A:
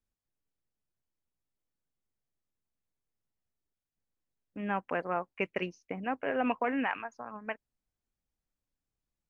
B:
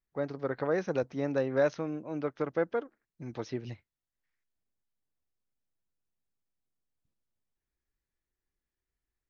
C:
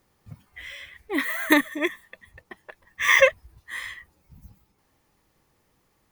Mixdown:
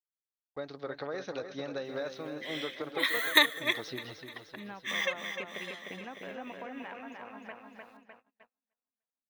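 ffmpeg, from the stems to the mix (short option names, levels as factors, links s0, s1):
-filter_complex "[0:a]acompressor=threshold=0.0224:ratio=6,volume=0.422,asplit=3[s0][s1][s2];[s1]volume=0.631[s3];[1:a]lowshelf=f=310:g=-10.5,bandreject=f=970:w=17,acompressor=threshold=0.02:ratio=6,adelay=400,volume=1,asplit=2[s4][s5];[s5]volume=0.376[s6];[2:a]highpass=580,adelay=1850,volume=0.668,asplit=2[s7][s8];[s8]volume=0.1[s9];[s2]apad=whole_len=351416[s10];[s7][s10]sidechaincompress=threshold=0.00141:ratio=3:attack=7.4:release=266[s11];[s3][s6][s9]amix=inputs=3:normalize=0,aecho=0:1:303|606|909|1212|1515|1818|2121|2424|2727:1|0.59|0.348|0.205|0.121|0.0715|0.0422|0.0249|0.0147[s12];[s0][s4][s11][s12]amix=inputs=4:normalize=0,agate=range=0.0224:threshold=0.00158:ratio=16:detection=peak,equalizer=f=3800:w=2.7:g=12.5"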